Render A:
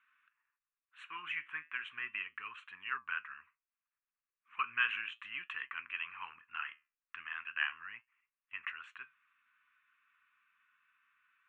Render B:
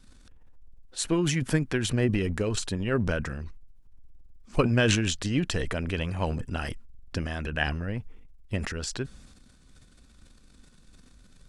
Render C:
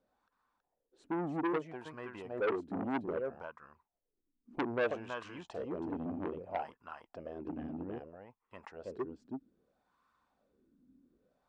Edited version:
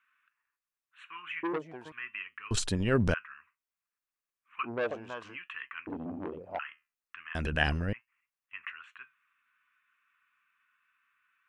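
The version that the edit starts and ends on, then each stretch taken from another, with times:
A
1.43–1.92 from C
2.51–3.14 from B
4.66–5.35 from C, crossfade 0.06 s
5.87–6.59 from C
7.35–7.93 from B

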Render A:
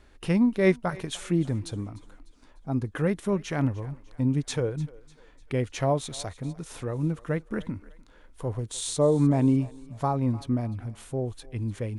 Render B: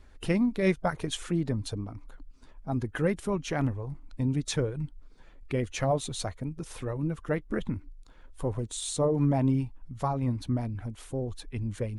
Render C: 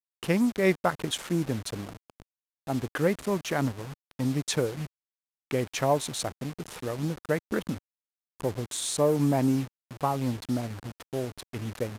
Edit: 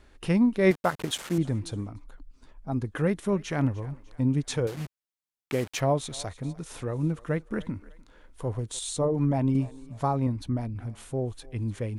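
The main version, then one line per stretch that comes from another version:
A
0.71–1.38 from C
1.92–2.78 from B, crossfade 0.24 s
4.67–5.8 from C
8.79–9.55 from B
10.27–10.76 from B

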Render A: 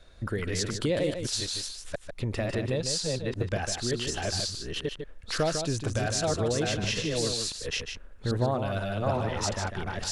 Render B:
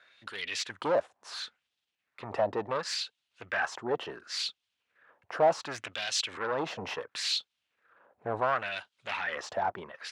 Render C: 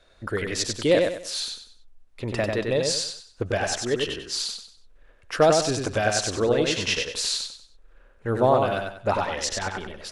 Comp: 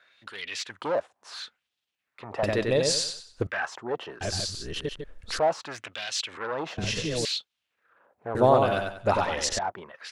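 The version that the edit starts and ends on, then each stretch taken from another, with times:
B
2.43–3.47 from C
4.21–5.39 from A
6.78–7.25 from A
8.35–9.59 from C

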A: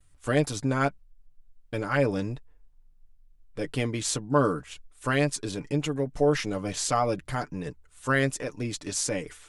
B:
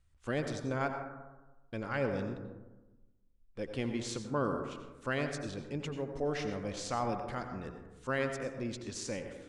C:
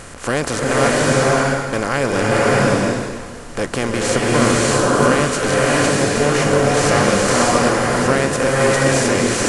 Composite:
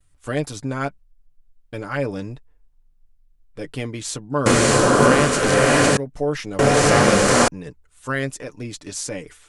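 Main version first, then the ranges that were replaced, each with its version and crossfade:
A
4.46–5.97 from C
6.59–7.48 from C
not used: B

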